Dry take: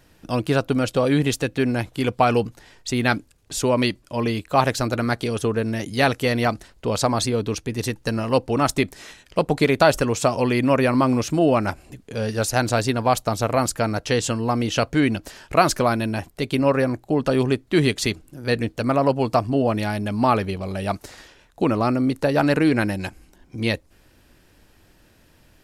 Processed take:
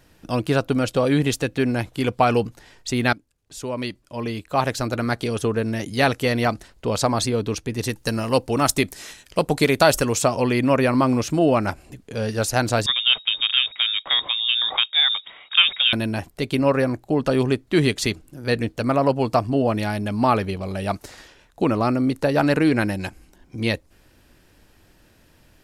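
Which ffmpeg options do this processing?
ffmpeg -i in.wav -filter_complex "[0:a]asettb=1/sr,asplit=3[link_01][link_02][link_03];[link_01]atrim=end=7.894[link_04];[link_02]atrim=start=7.89:end=10.22,asetpts=PTS-STARTPTS,afade=type=in:duration=0.004:curve=qsin,afade=type=out:start_time=2.326:duration=0.004:curve=qsin,aemphasis=mode=production:type=cd[link_05];[link_03]atrim=start=10.216[link_06];[link_04][link_05]acrossfade=duration=0.004:curve1=hsin:curve2=qsin[link_07];[link_07][link_06]acrossfade=duration=0.004:curve1=qsin:curve2=hsin,asettb=1/sr,asplit=3[link_08][link_09][link_10];[link_08]atrim=end=12.864[link_11];[link_09]atrim=start=12.86:end=15.93,asetpts=PTS-STARTPTS,afade=type=in:duration=0.004:curve=qsin,afade=type=out:start_time=3.066:duration=0.004:curve=qsin,lowpass=frequency=3200:width_type=q:width=0.5098,lowpass=frequency=3200:width_type=q:width=0.6013,lowpass=frequency=3200:width_type=q:width=0.9,lowpass=frequency=3200:width_type=q:width=2.563,afreqshift=-3800[link_12];[link_10]atrim=start=15.926[link_13];[link_11][link_12]acrossfade=duration=0.004:curve1=hsin:curve2=qsin[link_14];[link_14][link_13]acrossfade=duration=0.004:curve1=qsin:curve2=hsin,asplit=2[link_15][link_16];[link_15]atrim=end=3.13,asetpts=PTS-STARTPTS,afade=type=out:start_time=3.126:duration=0.004:curve=hsin:silence=0.141254[link_17];[link_16]atrim=start=3.13,asetpts=PTS-STARTPTS,afade=type=in:duration=2.18:silence=0.141254[link_18];[link_17][link_18]concat=n=2:v=0:a=1" out.wav

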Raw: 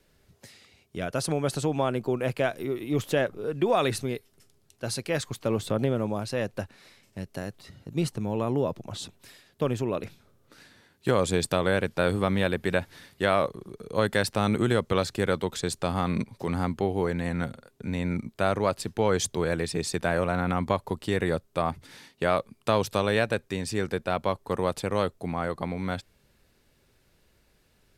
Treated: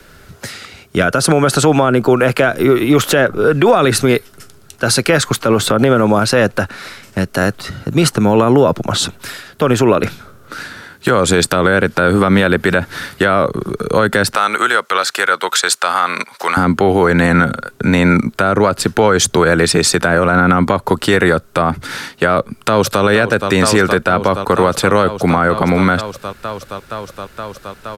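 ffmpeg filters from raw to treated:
ffmpeg -i in.wav -filter_complex "[0:a]asettb=1/sr,asplit=3[link_01][link_02][link_03];[link_01]atrim=end=14.354[link_04];[link_02]atrim=start=14.35:end=16.57,asetpts=PTS-STARTPTS,afade=type=in:duration=0.004:curve=qsin,afade=type=out:start_time=2.216:duration=0.004:curve=qsin,highpass=920[link_05];[link_03]atrim=start=16.566[link_06];[link_04][link_05]acrossfade=duration=0.004:curve1=hsin:curve2=qsin[link_07];[link_07][link_06]acrossfade=duration=0.004:curve1=qsin:curve2=hsin,asplit=2[link_08][link_09];[link_09]afade=type=in:start_time=22.38:duration=0.01,afade=type=out:start_time=23.03:duration=0.01,aecho=0:1:470|940|1410|1880|2350|2820|3290|3760|4230|4700|5170|5640:0.211349|0.179647|0.1527|0.129795|0.110325|0.0937766|0.0797101|0.0677536|0.0575906|0.048952|0.0416092|0.0353678[link_10];[link_08][link_10]amix=inputs=2:normalize=0,equalizer=frequency=1400:width=3.2:gain=11.5,acrossover=split=160|480[link_11][link_12][link_13];[link_11]acompressor=threshold=-43dB:ratio=4[link_14];[link_12]acompressor=threshold=-30dB:ratio=4[link_15];[link_13]acompressor=threshold=-29dB:ratio=4[link_16];[link_14][link_15][link_16]amix=inputs=3:normalize=0,alimiter=level_in=22dB:limit=-1dB:release=50:level=0:latency=1,volume=-1dB" out.wav

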